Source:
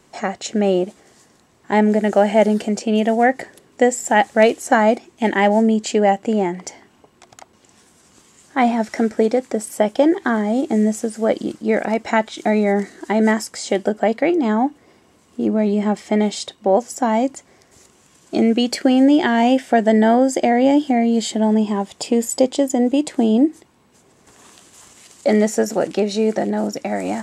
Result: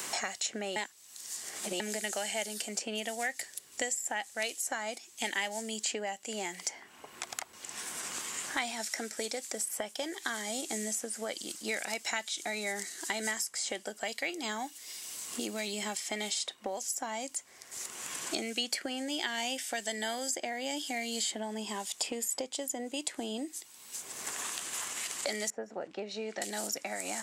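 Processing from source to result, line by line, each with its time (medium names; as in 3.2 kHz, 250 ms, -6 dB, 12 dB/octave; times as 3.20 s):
0.76–1.80 s: reverse
25.50–26.42 s: low-pass 1.1 kHz
whole clip: pre-emphasis filter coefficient 0.97; three bands compressed up and down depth 100%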